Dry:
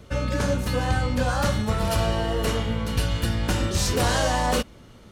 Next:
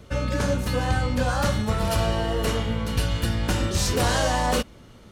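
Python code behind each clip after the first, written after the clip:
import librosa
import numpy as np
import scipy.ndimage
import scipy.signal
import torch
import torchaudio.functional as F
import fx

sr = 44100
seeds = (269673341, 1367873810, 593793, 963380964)

y = x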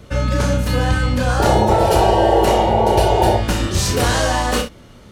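y = fx.spec_paint(x, sr, seeds[0], shape='noise', start_s=1.39, length_s=1.98, low_hz=320.0, high_hz=960.0, level_db=-21.0)
y = fx.room_early_taps(y, sr, ms=(33, 63), db=(-7.0, -11.0))
y = y * 10.0 ** (4.5 / 20.0)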